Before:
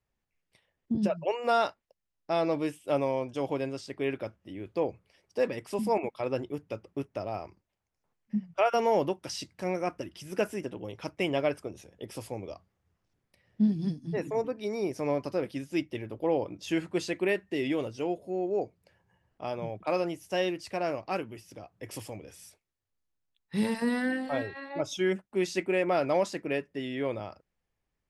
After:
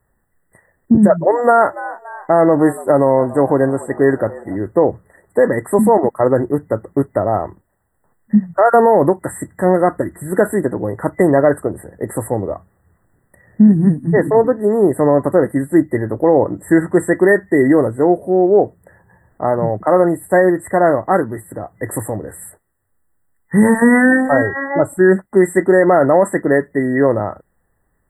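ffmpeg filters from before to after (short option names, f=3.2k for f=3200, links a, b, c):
-filter_complex "[0:a]asettb=1/sr,asplit=3[a][b][c];[a]atrim=end=0.924[d];[b]atrim=start=0.92:end=4.57,asetpts=PTS-STARTPTS,afade=t=in:d=0.004:c=qsin,afade=t=out:st=3.646:d=0.004:c=qsin,asplit=5[e][f][g][h][i];[f]adelay=286,afreqshift=98,volume=-20.5dB[j];[g]adelay=572,afreqshift=196,volume=-26.5dB[k];[h]adelay=858,afreqshift=294,volume=-32.5dB[l];[i]adelay=1144,afreqshift=392,volume=-38.6dB[m];[e][j][k][l][m]amix=inputs=5:normalize=0,atrim=end_sample=160965[n];[c]atrim=start=4.566[o];[d][n]acrossfade=d=0.004:c1=hsin:c2=qsin[p];[p][o]acrossfade=d=0.004:c1=qsin:c2=hsin,afftfilt=real='re*(1-between(b*sr/4096,2000,7400))':imag='im*(1-between(b*sr/4096,2000,7400))':win_size=4096:overlap=0.75,equalizer=f=2k:t=o:w=0.5:g=3,alimiter=level_in=19.5dB:limit=-1dB:release=50:level=0:latency=1,volume=-1dB"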